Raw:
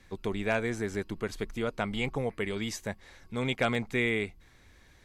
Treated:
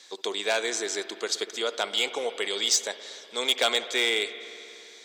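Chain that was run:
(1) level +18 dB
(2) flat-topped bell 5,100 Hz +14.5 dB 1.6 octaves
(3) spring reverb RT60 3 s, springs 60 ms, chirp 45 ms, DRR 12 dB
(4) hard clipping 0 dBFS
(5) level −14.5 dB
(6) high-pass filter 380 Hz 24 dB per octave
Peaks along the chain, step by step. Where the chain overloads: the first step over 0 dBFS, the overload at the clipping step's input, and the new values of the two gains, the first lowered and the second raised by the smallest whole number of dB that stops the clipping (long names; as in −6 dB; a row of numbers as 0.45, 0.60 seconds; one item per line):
+3.0, +8.0, +8.5, 0.0, −14.5, −10.0 dBFS
step 1, 8.5 dB
step 1 +9 dB, step 5 −5.5 dB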